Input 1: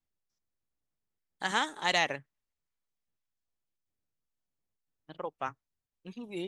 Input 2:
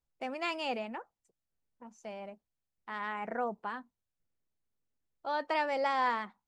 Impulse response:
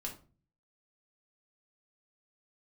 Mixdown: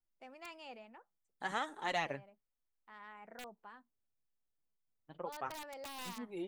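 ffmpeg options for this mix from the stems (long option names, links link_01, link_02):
-filter_complex "[0:a]equalizer=frequency=5300:width_type=o:width=2.8:gain=-12,flanger=delay=2:depth=7.3:regen=36:speed=1.1:shape=triangular,volume=1dB[link_01];[1:a]aeval=exprs='(mod(15.8*val(0)+1,2)-1)/15.8':channel_layout=same,volume=-15dB[link_02];[link_01][link_02]amix=inputs=2:normalize=0,equalizer=frequency=160:width=0.31:gain=-2.5"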